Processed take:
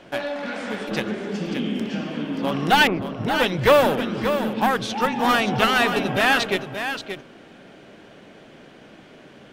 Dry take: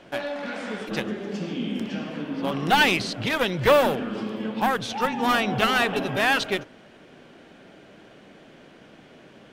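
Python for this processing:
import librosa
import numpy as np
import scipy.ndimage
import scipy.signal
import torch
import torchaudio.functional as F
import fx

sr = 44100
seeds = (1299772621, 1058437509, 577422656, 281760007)

y = fx.lowpass(x, sr, hz=1400.0, slope=24, at=(2.87, 3.4))
y = y + 10.0 ** (-8.5 / 20.0) * np.pad(y, (int(578 * sr / 1000.0), 0))[:len(y)]
y = F.gain(torch.from_numpy(y), 2.5).numpy()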